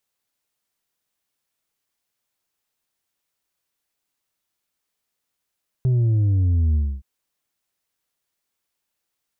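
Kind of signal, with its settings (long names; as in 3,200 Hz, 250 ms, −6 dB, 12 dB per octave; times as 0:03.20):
bass drop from 130 Hz, over 1.17 s, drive 4 dB, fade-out 0.27 s, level −16 dB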